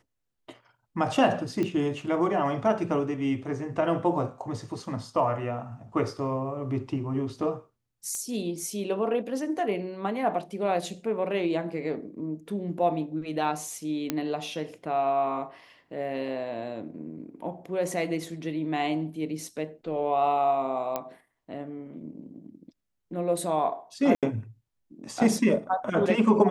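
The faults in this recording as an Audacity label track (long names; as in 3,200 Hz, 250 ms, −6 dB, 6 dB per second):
1.630000	1.630000	click −18 dBFS
8.150000	8.150000	click −23 dBFS
14.100000	14.100000	click −12 dBFS
20.960000	20.960000	click −15 dBFS
24.150000	24.230000	drop-out 77 ms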